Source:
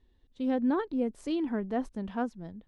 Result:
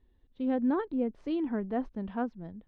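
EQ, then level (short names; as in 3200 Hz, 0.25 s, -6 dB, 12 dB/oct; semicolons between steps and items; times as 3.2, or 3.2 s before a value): air absorption 270 m; 0.0 dB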